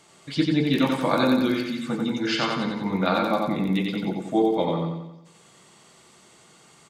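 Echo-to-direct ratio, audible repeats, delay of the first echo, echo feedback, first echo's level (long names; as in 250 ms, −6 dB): −1.5 dB, 6, 90 ms, 50%, −3.0 dB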